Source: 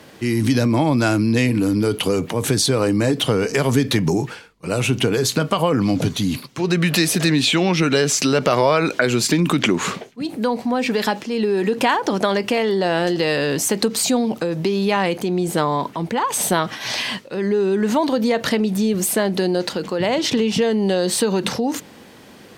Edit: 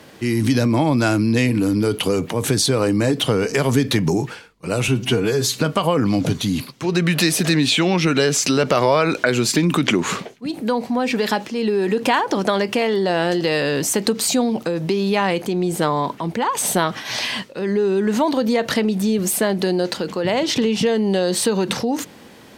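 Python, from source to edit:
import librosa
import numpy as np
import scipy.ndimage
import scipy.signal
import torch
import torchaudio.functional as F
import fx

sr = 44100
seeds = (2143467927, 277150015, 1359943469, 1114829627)

y = fx.edit(x, sr, fx.stretch_span(start_s=4.88, length_s=0.49, factor=1.5), tone=tone)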